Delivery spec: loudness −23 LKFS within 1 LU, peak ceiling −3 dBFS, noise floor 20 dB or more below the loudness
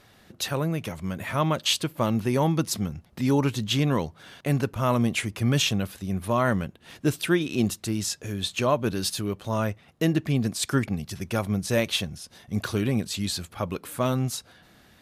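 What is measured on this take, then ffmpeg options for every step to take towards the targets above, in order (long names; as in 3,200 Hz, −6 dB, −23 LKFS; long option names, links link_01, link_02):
integrated loudness −26.5 LKFS; sample peak −10.0 dBFS; target loudness −23.0 LKFS
→ -af "volume=3.5dB"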